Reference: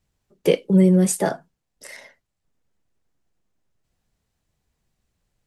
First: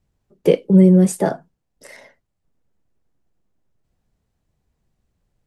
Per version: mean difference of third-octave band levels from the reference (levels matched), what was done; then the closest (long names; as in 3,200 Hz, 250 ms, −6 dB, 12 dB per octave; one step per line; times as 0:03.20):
2.5 dB: tilt shelving filter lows +4.5 dB, about 1,200 Hz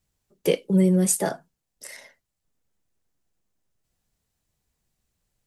1.0 dB: high-shelf EQ 5,800 Hz +9 dB
level −4 dB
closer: second